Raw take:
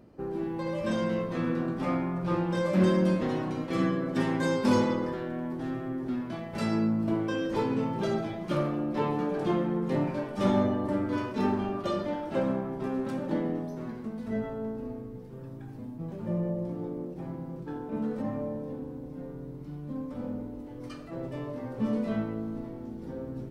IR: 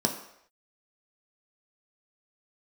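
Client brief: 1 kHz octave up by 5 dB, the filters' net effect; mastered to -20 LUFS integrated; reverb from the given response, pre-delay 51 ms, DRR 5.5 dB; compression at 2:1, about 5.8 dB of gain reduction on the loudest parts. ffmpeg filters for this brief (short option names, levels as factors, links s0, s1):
-filter_complex "[0:a]equalizer=f=1000:t=o:g=6,acompressor=threshold=0.0355:ratio=2,asplit=2[s0][s1];[1:a]atrim=start_sample=2205,adelay=51[s2];[s1][s2]afir=irnorm=-1:irlink=0,volume=0.188[s3];[s0][s3]amix=inputs=2:normalize=0,volume=2.51"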